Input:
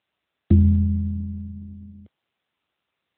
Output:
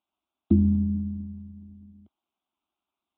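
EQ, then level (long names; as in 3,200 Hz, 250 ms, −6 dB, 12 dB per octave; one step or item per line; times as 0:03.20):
bass and treble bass −1 dB, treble −10 dB
dynamic equaliser 250 Hz, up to +7 dB, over −33 dBFS, Q 0.97
phaser with its sweep stopped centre 490 Hz, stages 6
−3.0 dB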